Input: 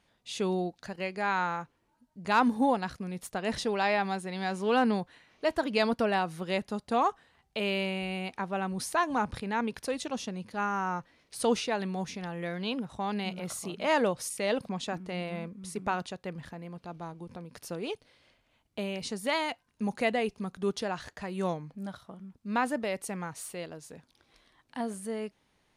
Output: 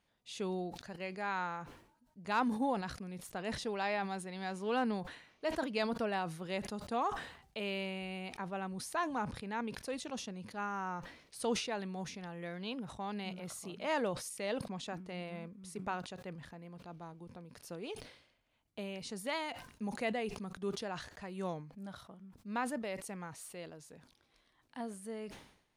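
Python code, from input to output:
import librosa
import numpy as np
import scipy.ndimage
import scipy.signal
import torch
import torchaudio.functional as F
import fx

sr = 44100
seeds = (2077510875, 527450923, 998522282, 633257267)

y = fx.sustainer(x, sr, db_per_s=86.0)
y = y * librosa.db_to_amplitude(-8.0)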